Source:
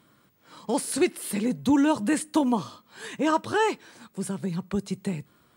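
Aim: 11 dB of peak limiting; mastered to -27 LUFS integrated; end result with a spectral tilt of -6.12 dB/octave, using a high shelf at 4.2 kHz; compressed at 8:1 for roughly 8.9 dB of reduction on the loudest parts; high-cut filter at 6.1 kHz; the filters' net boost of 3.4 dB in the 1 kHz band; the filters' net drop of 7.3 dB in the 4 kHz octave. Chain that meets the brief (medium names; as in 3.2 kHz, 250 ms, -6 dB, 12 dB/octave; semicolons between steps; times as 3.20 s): low-pass 6.1 kHz; peaking EQ 1 kHz +4.5 dB; peaking EQ 4 kHz -6.5 dB; treble shelf 4.2 kHz -6 dB; compression 8:1, threshold -25 dBFS; trim +9.5 dB; peak limiter -17 dBFS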